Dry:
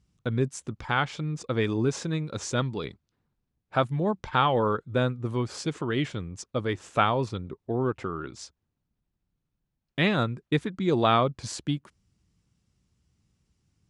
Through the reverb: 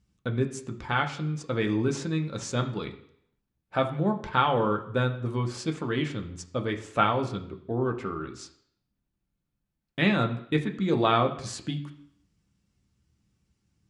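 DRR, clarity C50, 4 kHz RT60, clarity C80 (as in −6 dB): 3.0 dB, 12.0 dB, 0.65 s, 15.0 dB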